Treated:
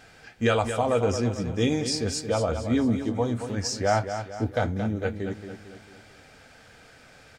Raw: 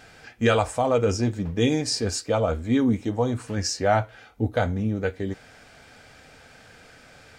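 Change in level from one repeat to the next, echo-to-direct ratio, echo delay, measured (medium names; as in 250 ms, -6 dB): -6.5 dB, -8.0 dB, 225 ms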